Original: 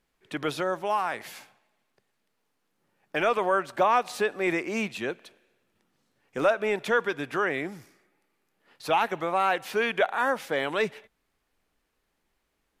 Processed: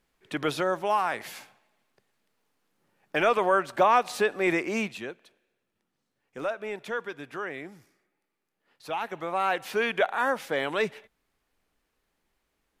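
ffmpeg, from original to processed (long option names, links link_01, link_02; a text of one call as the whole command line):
ffmpeg -i in.wav -af "volume=9dB,afade=type=out:start_time=4.71:duration=0.41:silence=0.334965,afade=type=in:start_time=8.97:duration=0.66:silence=0.421697" out.wav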